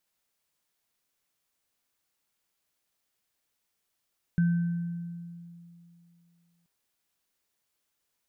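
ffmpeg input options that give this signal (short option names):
-f lavfi -i "aevalsrc='0.106*pow(10,-3*t/2.7)*sin(2*PI*171*t)+0.0133*pow(10,-3*t/1.27)*sin(2*PI*1540*t)':d=2.28:s=44100"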